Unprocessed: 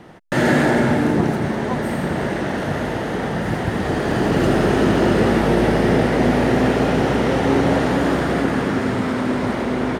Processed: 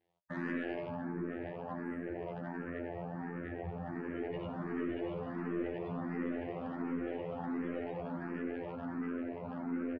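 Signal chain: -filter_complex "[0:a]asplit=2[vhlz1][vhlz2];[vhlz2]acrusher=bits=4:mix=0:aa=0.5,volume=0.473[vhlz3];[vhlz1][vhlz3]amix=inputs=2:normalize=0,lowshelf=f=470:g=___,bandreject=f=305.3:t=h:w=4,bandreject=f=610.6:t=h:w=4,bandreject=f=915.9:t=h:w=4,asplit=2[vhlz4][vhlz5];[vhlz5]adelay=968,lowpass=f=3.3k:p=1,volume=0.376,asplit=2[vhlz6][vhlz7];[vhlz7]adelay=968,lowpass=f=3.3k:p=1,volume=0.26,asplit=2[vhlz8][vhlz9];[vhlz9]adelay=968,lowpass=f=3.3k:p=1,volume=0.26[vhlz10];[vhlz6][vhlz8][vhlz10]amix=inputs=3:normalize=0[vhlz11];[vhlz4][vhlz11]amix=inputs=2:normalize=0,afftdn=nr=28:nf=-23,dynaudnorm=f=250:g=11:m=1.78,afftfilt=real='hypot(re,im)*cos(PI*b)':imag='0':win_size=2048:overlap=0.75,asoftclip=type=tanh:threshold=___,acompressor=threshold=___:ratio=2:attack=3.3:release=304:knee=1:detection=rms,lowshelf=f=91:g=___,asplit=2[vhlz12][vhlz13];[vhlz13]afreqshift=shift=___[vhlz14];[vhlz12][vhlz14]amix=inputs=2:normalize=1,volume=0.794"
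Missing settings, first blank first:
-2.5, 0.251, 0.0141, -5, 1.4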